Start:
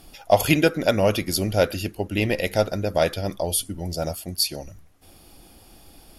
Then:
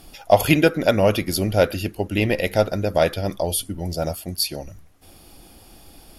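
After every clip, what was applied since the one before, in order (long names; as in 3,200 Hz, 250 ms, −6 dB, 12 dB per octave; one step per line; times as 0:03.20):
dynamic equaliser 7,000 Hz, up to −5 dB, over −42 dBFS, Q 0.82
level +2.5 dB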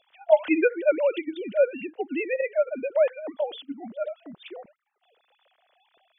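three sine waves on the formant tracks
level −5 dB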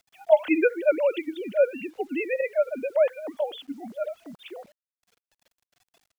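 bit reduction 10 bits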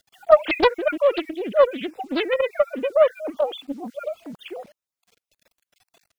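time-frequency cells dropped at random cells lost 21%
highs frequency-modulated by the lows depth 0.44 ms
level +5.5 dB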